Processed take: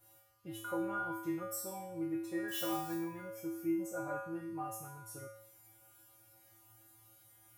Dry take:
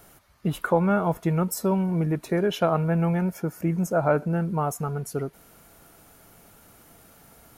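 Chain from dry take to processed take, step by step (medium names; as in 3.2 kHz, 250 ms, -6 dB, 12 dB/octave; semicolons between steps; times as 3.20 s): 2.48–2.95 s: zero-crossing glitches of -24.5 dBFS; treble shelf 9.4 kHz +10 dB; feedback comb 110 Hz, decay 0.69 s, harmonics odd, mix 100%; trim +3 dB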